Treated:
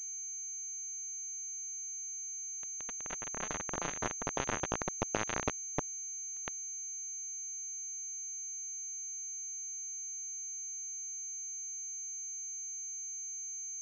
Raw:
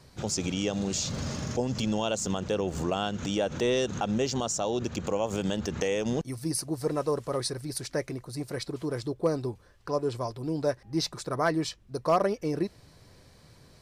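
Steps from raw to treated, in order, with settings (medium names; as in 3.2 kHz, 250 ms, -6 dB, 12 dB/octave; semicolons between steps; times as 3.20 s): knee-point frequency compression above 2.5 kHz 1.5:1; Doppler pass-by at 5.43 s, 40 m/s, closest 6.4 m; tilt shelf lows +7 dB, about 1.1 kHz; hum notches 50/100/150/200/250 Hz; compression 6:1, threshold -46 dBFS, peak gain reduction 23.5 dB; companded quantiser 2-bit; ever faster or slower copies 287 ms, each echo +4 st, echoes 3; whistle 2.3 kHz -75 dBFS; class-D stage that switches slowly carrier 6.3 kHz; trim +7.5 dB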